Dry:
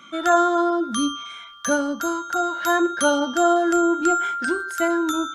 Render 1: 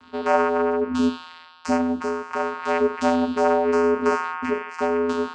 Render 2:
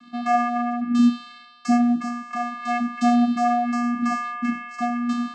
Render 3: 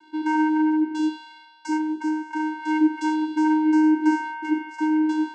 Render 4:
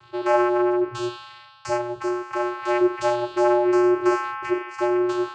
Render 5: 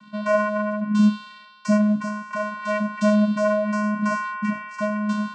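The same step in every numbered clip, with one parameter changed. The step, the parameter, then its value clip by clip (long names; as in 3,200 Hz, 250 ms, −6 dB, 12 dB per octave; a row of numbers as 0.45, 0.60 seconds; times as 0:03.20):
channel vocoder, frequency: 84, 240, 310, 120, 210 Hertz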